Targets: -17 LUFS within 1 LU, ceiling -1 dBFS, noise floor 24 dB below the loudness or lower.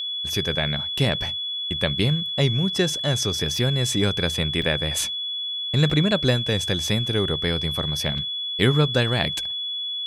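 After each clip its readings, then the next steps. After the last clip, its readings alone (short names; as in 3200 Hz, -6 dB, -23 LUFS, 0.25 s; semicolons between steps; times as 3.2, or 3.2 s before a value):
dropouts 3; longest dropout 4.0 ms; steady tone 3400 Hz; tone level -26 dBFS; loudness -22.5 LUFS; peak -4.5 dBFS; loudness target -17.0 LUFS
-> interpolate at 4.62/5.9/8.18, 4 ms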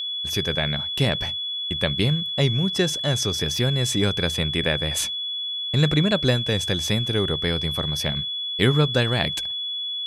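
dropouts 0; steady tone 3400 Hz; tone level -26 dBFS
-> notch 3400 Hz, Q 30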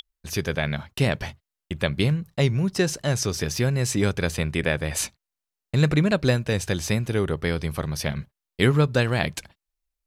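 steady tone none; loudness -24.5 LUFS; peak -5.5 dBFS; loudness target -17.0 LUFS
-> gain +7.5 dB; limiter -1 dBFS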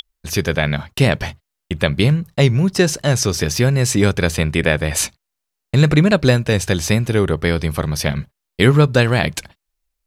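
loudness -17.0 LUFS; peak -1.0 dBFS; noise floor -80 dBFS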